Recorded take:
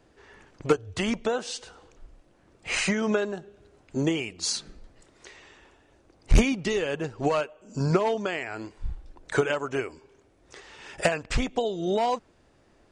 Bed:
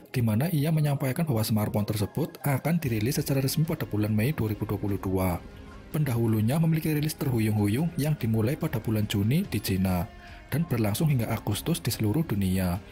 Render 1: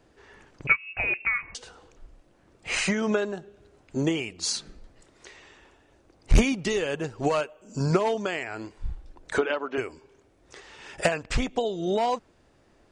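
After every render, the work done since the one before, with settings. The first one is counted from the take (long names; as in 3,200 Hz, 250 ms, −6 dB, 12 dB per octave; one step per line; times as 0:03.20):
0:00.67–0:01.55: voice inversion scrambler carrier 2,700 Hz
0:06.42–0:08.44: high-shelf EQ 8,000 Hz +7.5 dB
0:09.38–0:09.78: elliptic band-pass filter 220–4,300 Hz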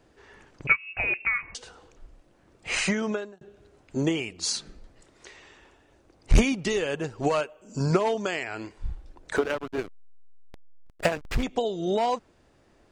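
0:02.94–0:03.41: fade out
0:08.23–0:08.71: parametric band 7,400 Hz → 1,900 Hz +7 dB
0:09.36–0:11.43: slack as between gear wheels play −25.5 dBFS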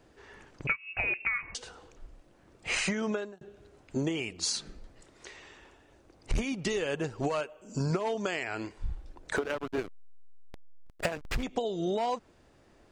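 downward compressor 6 to 1, threshold −27 dBFS, peak gain reduction 12.5 dB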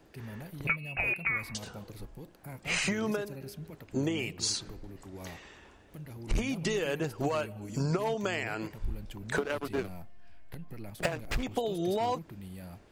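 mix in bed −18.5 dB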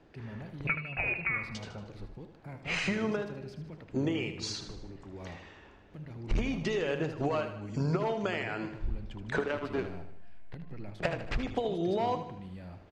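high-frequency loss of the air 140 metres
repeating echo 77 ms, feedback 50%, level −10 dB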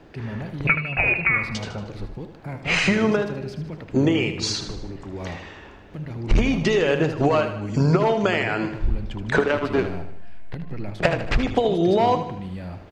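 level +11.5 dB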